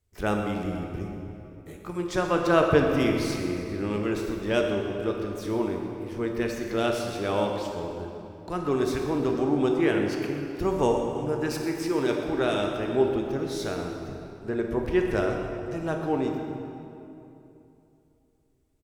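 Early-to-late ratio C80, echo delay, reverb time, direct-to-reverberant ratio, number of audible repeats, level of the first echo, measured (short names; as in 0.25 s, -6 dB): 4.0 dB, 0.125 s, 2.9 s, 1.5 dB, 1, -13.5 dB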